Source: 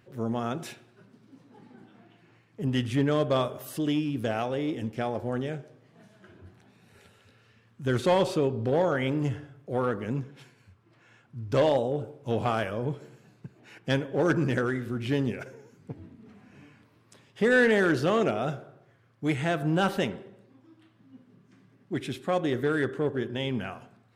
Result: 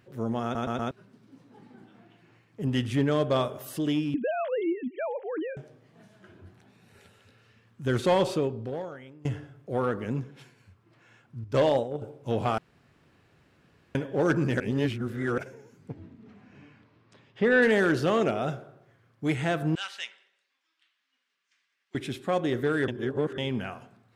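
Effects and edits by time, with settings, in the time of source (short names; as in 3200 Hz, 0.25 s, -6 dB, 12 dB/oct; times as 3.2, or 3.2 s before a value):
0.43 stutter in place 0.12 s, 4 plays
4.14–5.57 sine-wave speech
8.33–9.25 fade out quadratic, to -24 dB
11.44–12.02 gate -28 dBFS, range -7 dB
12.58–13.95 room tone
14.6–15.38 reverse
15.91–17.61 LPF 7000 Hz -> 3300 Hz
19.75–21.95 Butterworth band-pass 4000 Hz, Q 0.7
22.88–23.38 reverse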